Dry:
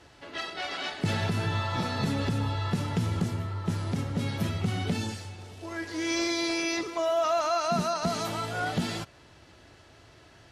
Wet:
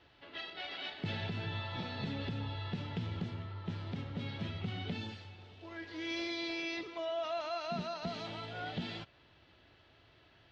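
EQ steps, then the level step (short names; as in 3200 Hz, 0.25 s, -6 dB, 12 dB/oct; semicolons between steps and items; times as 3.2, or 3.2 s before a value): dynamic EQ 1200 Hz, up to -6 dB, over -45 dBFS, Q 2.7; ladder low-pass 4200 Hz, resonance 40%; -2.0 dB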